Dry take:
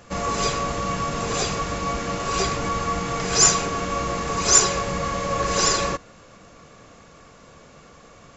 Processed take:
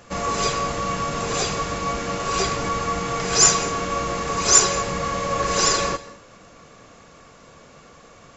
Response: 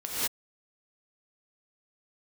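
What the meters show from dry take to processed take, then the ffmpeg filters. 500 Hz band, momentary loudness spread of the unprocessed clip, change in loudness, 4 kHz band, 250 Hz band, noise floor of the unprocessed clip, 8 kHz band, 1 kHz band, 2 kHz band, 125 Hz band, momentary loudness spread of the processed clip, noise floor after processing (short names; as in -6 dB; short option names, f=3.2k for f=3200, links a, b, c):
+1.0 dB, 10 LU, +1.0 dB, +1.0 dB, -0.5 dB, -49 dBFS, n/a, +1.0 dB, +1.0 dB, -1.0 dB, 11 LU, -49 dBFS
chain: -filter_complex "[0:a]lowshelf=f=210:g=-3,asplit=2[a][b];[1:a]atrim=start_sample=2205,adelay=8[c];[b][c]afir=irnorm=-1:irlink=0,volume=-25dB[d];[a][d]amix=inputs=2:normalize=0,volume=1dB"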